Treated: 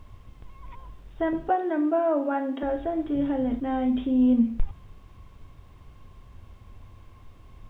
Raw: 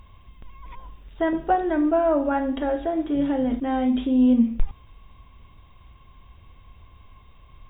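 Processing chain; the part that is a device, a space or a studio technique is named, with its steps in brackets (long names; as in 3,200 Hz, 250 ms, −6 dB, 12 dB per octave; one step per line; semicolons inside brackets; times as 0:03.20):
car interior (parametric band 100 Hz +8 dB 0.64 octaves; high-shelf EQ 3,100 Hz −6 dB; brown noise bed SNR 22 dB)
0:01.49–0:02.63: high-pass filter 230 Hz 24 dB per octave
level −3 dB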